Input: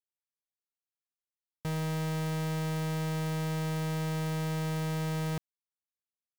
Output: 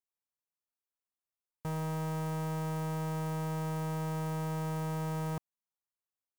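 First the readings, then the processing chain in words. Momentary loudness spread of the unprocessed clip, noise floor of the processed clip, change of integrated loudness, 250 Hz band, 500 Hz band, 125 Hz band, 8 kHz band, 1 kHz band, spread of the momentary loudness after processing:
2 LU, below −85 dBFS, −2.5 dB, −3.0 dB, −2.0 dB, −3.0 dB, −4.5 dB, +1.0 dB, 2 LU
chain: octave-band graphic EQ 1,000/2,000/4,000 Hz +6/−4/−7 dB
level −3 dB

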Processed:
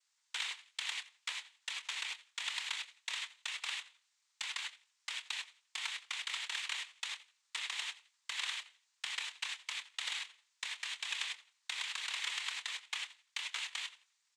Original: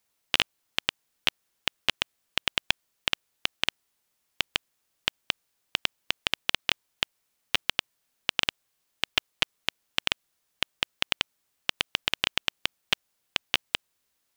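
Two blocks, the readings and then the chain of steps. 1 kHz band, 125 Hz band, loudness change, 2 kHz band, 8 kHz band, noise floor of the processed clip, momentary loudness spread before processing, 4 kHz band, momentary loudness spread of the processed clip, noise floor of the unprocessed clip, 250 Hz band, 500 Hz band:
−11.0 dB, below −40 dB, −10.0 dB, −9.0 dB, −2.5 dB, −80 dBFS, 6 LU, −10.5 dB, 7 LU, −77 dBFS, below −35 dB, −24.5 dB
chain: Butterworth high-pass 1,000 Hz 72 dB per octave
output level in coarse steps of 17 dB
on a send: tape delay 86 ms, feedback 25%, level −18.5 dB, low-pass 5,700 Hz
on the sum: reverb whose tail is shaped and stops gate 120 ms flat, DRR 4.5 dB
dynamic equaliser 5,400 Hz, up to −4 dB, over −51 dBFS, Q 1
downward compressor 3 to 1, threshold −38 dBFS, peak gain reduction 8.5 dB
double-tracking delay 26 ms −11 dB
cochlear-implant simulation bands 6
level +4.5 dB

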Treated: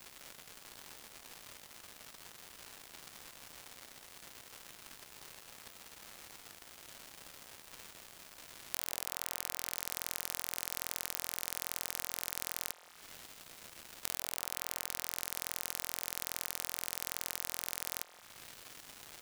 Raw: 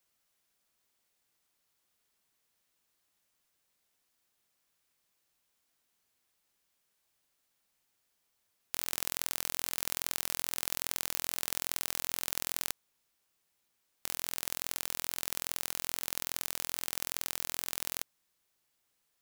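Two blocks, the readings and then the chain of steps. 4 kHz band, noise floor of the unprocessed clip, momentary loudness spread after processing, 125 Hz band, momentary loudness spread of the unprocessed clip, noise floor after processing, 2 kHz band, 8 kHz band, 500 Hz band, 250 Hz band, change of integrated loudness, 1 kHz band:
−3.0 dB, −78 dBFS, 14 LU, −2.5 dB, 3 LU, −59 dBFS, −2.5 dB, −3.0 dB, −2.0 dB, −3.0 dB, −5.5 dB, −2.5 dB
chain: surface crackle 340 per second −54 dBFS
downward compressor 10 to 1, threshold −49 dBFS, peak gain reduction 22.5 dB
echo through a band-pass that steps 171 ms, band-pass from 620 Hz, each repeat 0.7 octaves, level −8 dB
level +18 dB

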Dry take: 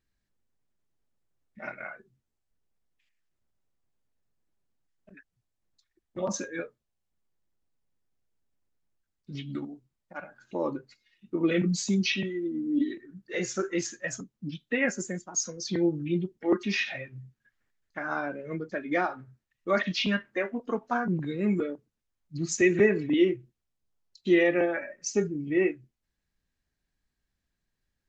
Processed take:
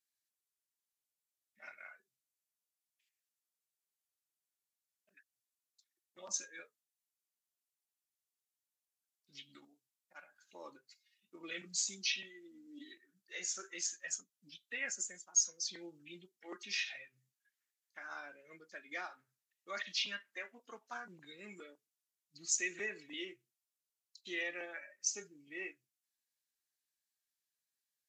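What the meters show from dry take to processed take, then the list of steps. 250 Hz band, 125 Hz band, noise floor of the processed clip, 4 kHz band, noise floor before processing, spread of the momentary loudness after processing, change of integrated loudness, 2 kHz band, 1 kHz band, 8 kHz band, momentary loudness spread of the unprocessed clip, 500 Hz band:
−27.0 dB, −31.5 dB, below −85 dBFS, −5.0 dB, −83 dBFS, 21 LU, −10.5 dB, −10.5 dB, −16.5 dB, −0.5 dB, 18 LU, −23.5 dB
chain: first difference
level +1 dB
MP3 80 kbit/s 32,000 Hz

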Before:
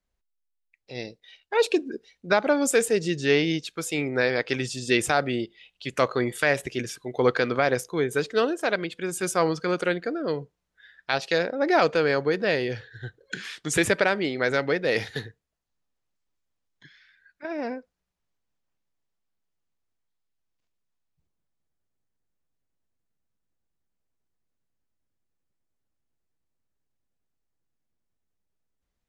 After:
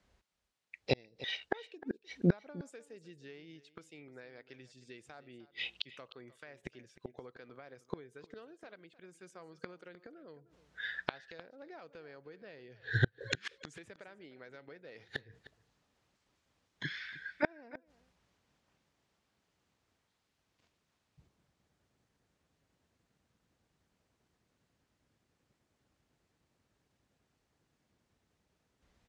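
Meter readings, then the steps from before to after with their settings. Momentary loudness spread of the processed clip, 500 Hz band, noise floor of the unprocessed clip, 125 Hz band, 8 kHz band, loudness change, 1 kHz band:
18 LU, −20.5 dB, −80 dBFS, −6.5 dB, −26.5 dB, −14.5 dB, −20.5 dB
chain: high-pass filter 55 Hz
downward compressor 5 to 1, threshold −23 dBFS, peak gain reduction 8 dB
gate with flip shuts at −27 dBFS, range −38 dB
high-frequency loss of the air 66 metres
on a send: single-tap delay 306 ms −17.5 dB
on the sum: level +13.5 dB

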